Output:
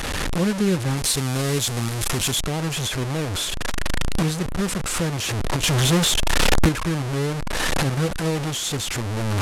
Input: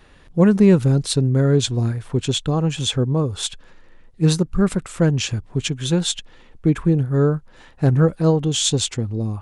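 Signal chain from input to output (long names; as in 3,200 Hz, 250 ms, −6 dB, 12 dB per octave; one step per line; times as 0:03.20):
linear delta modulator 64 kbit/s, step −14 dBFS
camcorder AGC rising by 17 dB per second
0:00.97–0:02.40: high-shelf EQ 4,300 Hz +9 dB
0:05.63–0:06.69: leveller curve on the samples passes 2
level −8 dB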